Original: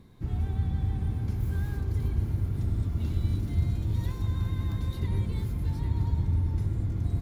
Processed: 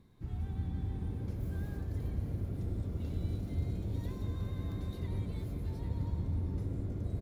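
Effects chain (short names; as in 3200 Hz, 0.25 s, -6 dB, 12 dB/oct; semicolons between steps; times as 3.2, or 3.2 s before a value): frequency-shifting echo 0.176 s, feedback 63%, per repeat +96 Hz, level -12 dB; gain -8.5 dB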